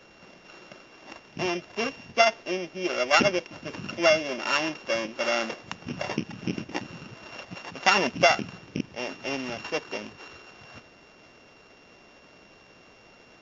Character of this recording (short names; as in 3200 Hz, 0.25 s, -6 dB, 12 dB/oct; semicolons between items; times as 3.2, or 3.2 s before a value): a buzz of ramps at a fixed pitch in blocks of 16 samples; WMA